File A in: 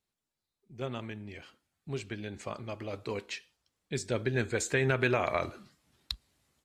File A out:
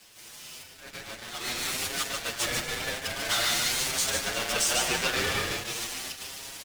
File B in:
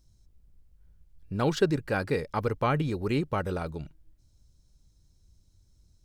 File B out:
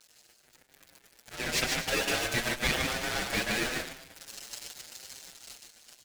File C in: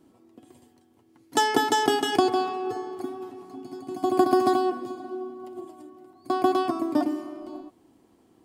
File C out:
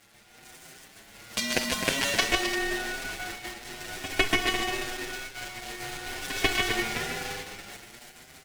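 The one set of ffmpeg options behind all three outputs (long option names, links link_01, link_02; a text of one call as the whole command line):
ffmpeg -i in.wav -filter_complex "[0:a]aeval=exprs='val(0)+0.5*0.0794*sgn(val(0))':channel_layout=same,aeval=exprs='0.596*(cos(1*acos(clip(val(0)/0.596,-1,1)))-cos(1*PI/2))+0.237*(cos(3*acos(clip(val(0)/0.596,-1,1)))-cos(3*PI/2))':channel_layout=same,highshelf=frequency=2300:gain=6,asplit=2[link_01][link_02];[link_02]aecho=0:1:48|133|149|244|260|345:0.119|0.335|0.531|0.112|0.251|0.188[link_03];[link_01][link_03]amix=inputs=2:normalize=0,asoftclip=type=tanh:threshold=-10dB,agate=range=-10dB:threshold=-38dB:ratio=16:detection=peak,highpass=620,aeval=exprs='val(0)*sin(2*PI*1100*n/s)':channel_layout=same,dynaudnorm=framelen=130:gausssize=21:maxgain=14.5dB,highshelf=frequency=12000:gain=-9.5,asplit=2[link_04][link_05];[link_05]adelay=6.8,afreqshift=0.91[link_06];[link_04][link_06]amix=inputs=2:normalize=1,volume=3.5dB" out.wav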